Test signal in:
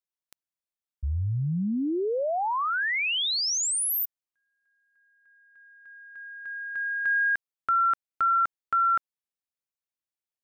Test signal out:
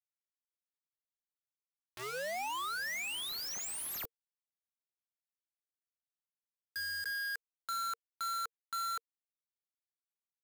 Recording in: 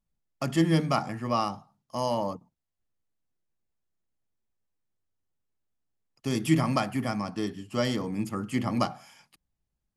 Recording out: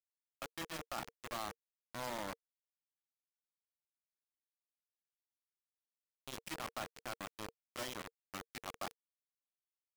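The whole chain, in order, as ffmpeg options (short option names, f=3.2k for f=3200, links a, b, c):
-filter_complex "[0:a]acrusher=bits=8:mode=log:mix=0:aa=0.000001,acrossover=split=360[a][b];[a]acompressor=threshold=-34dB:ratio=8:attack=2.7:release=49:knee=2.83:detection=peak[c];[c][b]amix=inputs=2:normalize=0,afftfilt=real='re*gte(hypot(re,im),0.0355)':imag='im*gte(hypot(re,im),0.0355)':win_size=1024:overlap=0.75,areverse,acompressor=threshold=-37dB:ratio=5:attack=3.9:release=60:knee=6:detection=peak,areverse,highpass=f=270:p=1,asplit=2[d][e];[e]aecho=0:1:647|1294|1941:0.0668|0.0354|0.0188[f];[d][f]amix=inputs=2:normalize=0,acrusher=bits=5:mix=0:aa=0.000001,bandreject=f=460:w=12,adynamicequalizer=threshold=0.00355:dfrequency=2700:dqfactor=0.7:tfrequency=2700:tqfactor=0.7:attack=5:release=100:ratio=0.375:range=2:mode=cutabove:tftype=highshelf,volume=-3dB"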